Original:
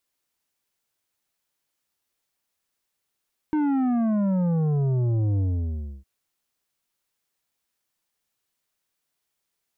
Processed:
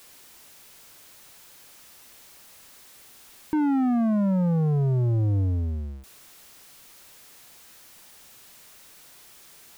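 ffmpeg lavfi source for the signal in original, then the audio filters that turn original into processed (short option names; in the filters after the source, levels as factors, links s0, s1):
-f lavfi -i "aevalsrc='0.0891*clip((2.51-t)/0.65,0,1)*tanh(2.82*sin(2*PI*310*2.51/log(65/310)*(exp(log(65/310)*t/2.51)-1)))/tanh(2.82)':d=2.51:s=44100"
-af "aeval=exprs='val(0)+0.5*0.00596*sgn(val(0))':c=same"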